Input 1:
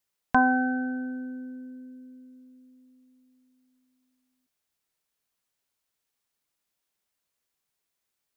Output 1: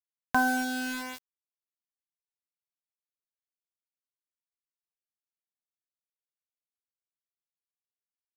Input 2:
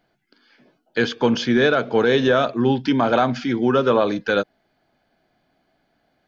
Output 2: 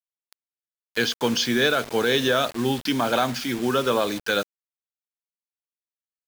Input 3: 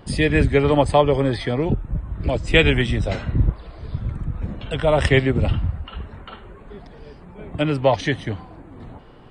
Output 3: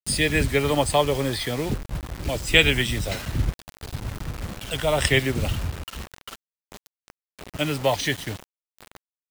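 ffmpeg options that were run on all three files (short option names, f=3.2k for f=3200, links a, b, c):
-af "crystalizer=i=5:c=0,acrusher=bits=4:mix=0:aa=0.000001,volume=-6dB"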